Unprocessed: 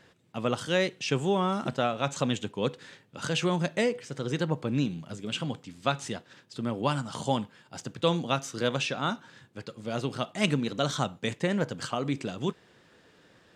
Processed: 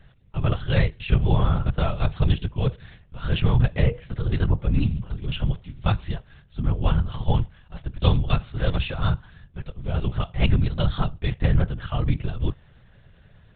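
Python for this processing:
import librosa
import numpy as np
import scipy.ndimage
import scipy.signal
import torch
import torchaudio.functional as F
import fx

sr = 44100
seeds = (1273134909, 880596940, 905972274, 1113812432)

y = fx.lpc_vocoder(x, sr, seeds[0], excitation='whisper', order=10)
y = fx.low_shelf_res(y, sr, hz=200.0, db=11.0, q=1.5)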